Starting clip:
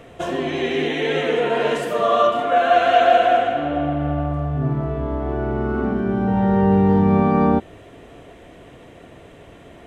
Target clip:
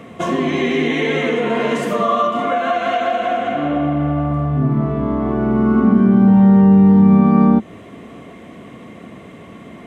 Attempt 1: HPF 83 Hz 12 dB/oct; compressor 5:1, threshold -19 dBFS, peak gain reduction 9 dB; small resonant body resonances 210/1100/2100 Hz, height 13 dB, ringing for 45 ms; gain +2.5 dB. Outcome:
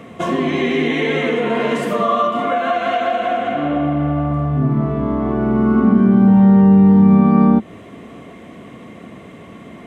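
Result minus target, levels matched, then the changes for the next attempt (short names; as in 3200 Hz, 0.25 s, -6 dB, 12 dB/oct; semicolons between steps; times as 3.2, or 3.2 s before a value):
8000 Hz band -2.5 dB
add after HPF: dynamic EQ 6400 Hz, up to +4 dB, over -54 dBFS, Q 3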